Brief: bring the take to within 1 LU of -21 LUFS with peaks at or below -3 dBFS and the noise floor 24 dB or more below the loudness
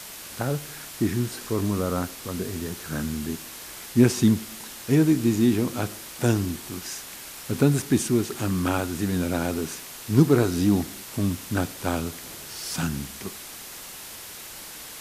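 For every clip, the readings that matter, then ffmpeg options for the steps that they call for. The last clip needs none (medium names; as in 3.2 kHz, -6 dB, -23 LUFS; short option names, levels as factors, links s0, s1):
noise floor -40 dBFS; noise floor target -50 dBFS; loudness -25.5 LUFS; peak level -4.5 dBFS; loudness target -21.0 LUFS
-> -af "afftdn=nr=10:nf=-40"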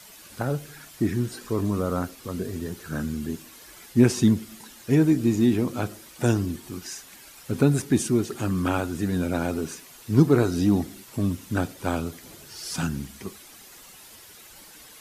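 noise floor -48 dBFS; noise floor target -50 dBFS
-> -af "afftdn=nr=6:nf=-48"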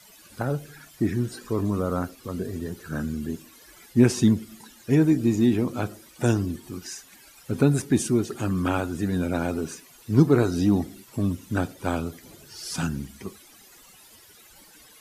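noise floor -52 dBFS; loudness -25.5 LUFS; peak level -5.0 dBFS; loudness target -21.0 LUFS
-> -af "volume=1.68,alimiter=limit=0.708:level=0:latency=1"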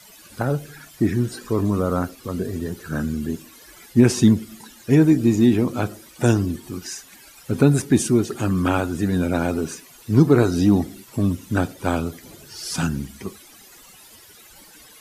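loudness -21.0 LUFS; peak level -3.0 dBFS; noise floor -48 dBFS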